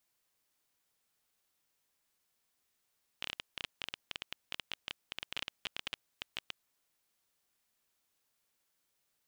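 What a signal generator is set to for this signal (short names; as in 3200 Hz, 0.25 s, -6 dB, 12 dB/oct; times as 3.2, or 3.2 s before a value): random clicks 14/s -20 dBFS 3.41 s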